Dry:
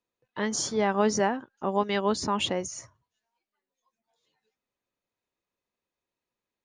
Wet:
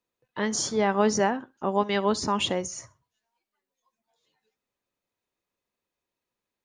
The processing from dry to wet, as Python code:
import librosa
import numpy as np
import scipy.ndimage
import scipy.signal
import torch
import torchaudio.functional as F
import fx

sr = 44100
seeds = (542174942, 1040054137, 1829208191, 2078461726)

y = fx.echo_feedback(x, sr, ms=65, feedback_pct=28, wet_db=-22.5)
y = y * librosa.db_to_amplitude(1.5)